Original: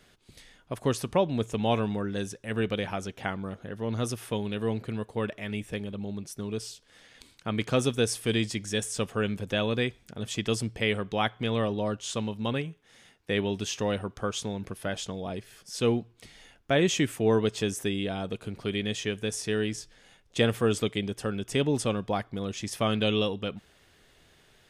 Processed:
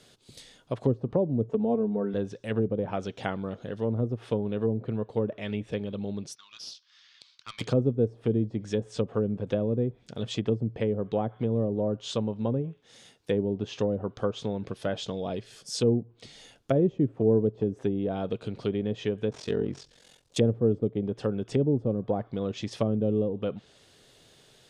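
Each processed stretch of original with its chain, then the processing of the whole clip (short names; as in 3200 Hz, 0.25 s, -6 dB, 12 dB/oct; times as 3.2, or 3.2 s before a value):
1.49–2.14 HPF 250 Hz 6 dB/oct + comb 4.5 ms, depth 80%
6.35–7.61 elliptic band-pass 1100–5600 Hz + tube stage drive 31 dB, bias 0.65
19.29–20.37 CVSD 64 kbps + ring modulator 22 Hz
whole clip: graphic EQ 125/250/500/2000/4000/8000 Hz +10/+5/+7/-4/+6/+5 dB; treble ducked by the level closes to 430 Hz, closed at -16.5 dBFS; low shelf 400 Hz -8 dB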